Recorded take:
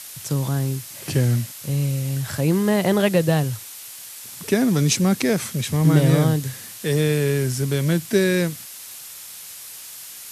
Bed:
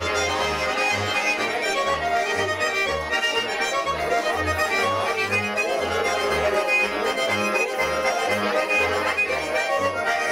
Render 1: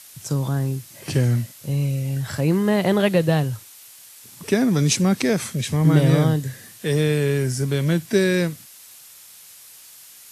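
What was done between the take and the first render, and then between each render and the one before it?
noise print and reduce 7 dB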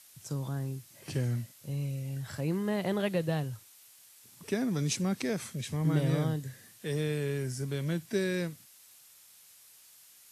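gain -12 dB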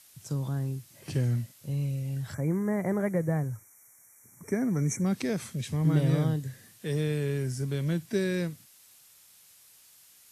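2.34–5.06 spectral gain 2400–5500 Hz -29 dB; low shelf 280 Hz +5 dB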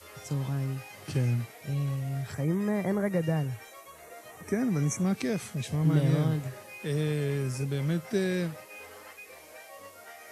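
add bed -25.5 dB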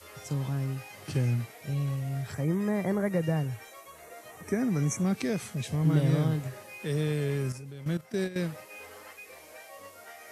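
7.52–8.36 level quantiser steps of 14 dB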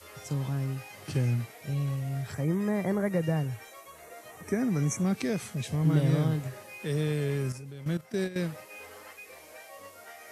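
nothing audible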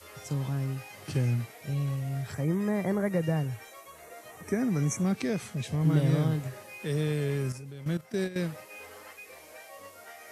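5.12–5.81 high shelf 7300 Hz -4.5 dB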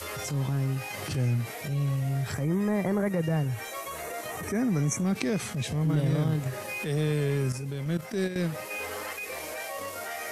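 transient shaper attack -9 dB, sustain -5 dB; fast leveller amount 50%

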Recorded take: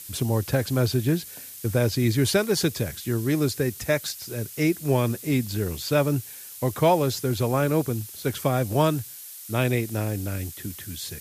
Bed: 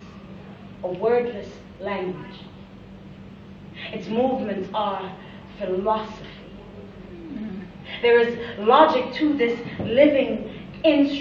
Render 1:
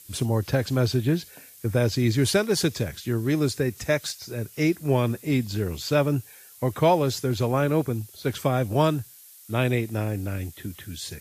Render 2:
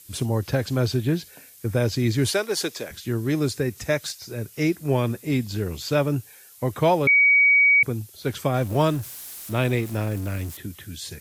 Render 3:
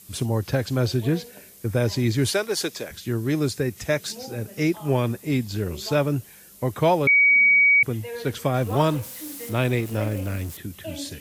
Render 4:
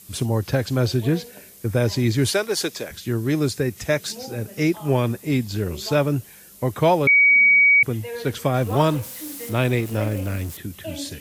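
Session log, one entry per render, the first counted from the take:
noise print and reduce 8 dB
2.31–2.91 HPF 380 Hz; 7.07–7.83 bleep 2260 Hz -13 dBFS; 8.54–10.57 zero-crossing step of -35 dBFS
add bed -18.5 dB
gain +2 dB

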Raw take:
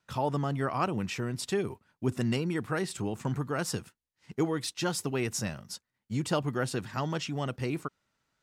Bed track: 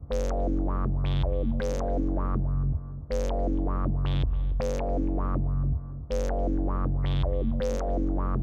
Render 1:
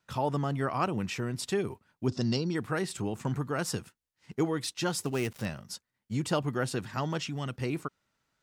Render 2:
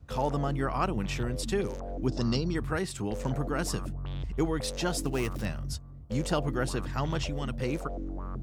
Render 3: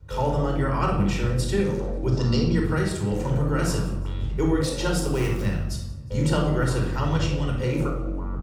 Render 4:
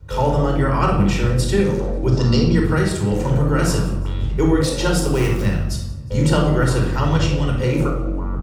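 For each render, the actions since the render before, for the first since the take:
2.08–2.55 EQ curve 670 Hz 0 dB, 2300 Hz -8 dB, 5000 Hz +13 dB, 12000 Hz -26 dB; 5.05–5.46 switching dead time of 0.084 ms; 7.18–7.58 dynamic EQ 580 Hz, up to -7 dB, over -46 dBFS, Q 0.85
add bed track -9.5 dB
feedback echo 0.18 s, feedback 46%, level -21 dB; shoebox room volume 2200 m³, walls furnished, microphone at 4.6 m
gain +6 dB

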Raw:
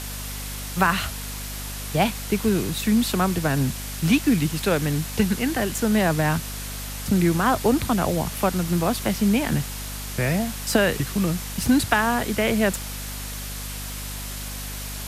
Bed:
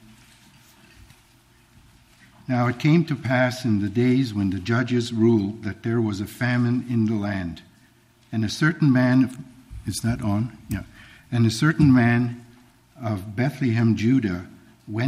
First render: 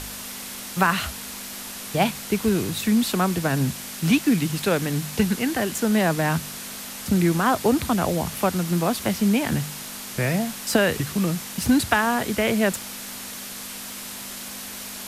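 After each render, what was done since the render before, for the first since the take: de-hum 50 Hz, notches 3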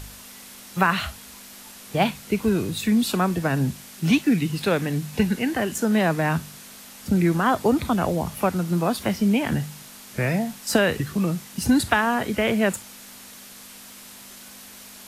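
noise print and reduce 8 dB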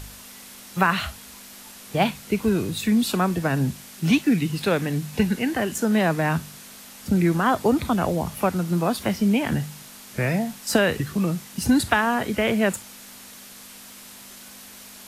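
nothing audible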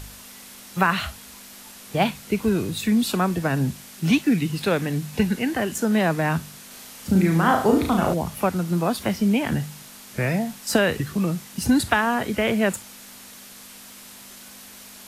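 6.67–8.14 flutter echo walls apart 6.3 m, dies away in 0.49 s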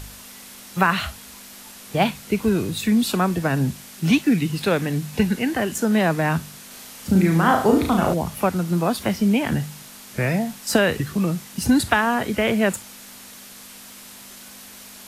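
gain +1.5 dB

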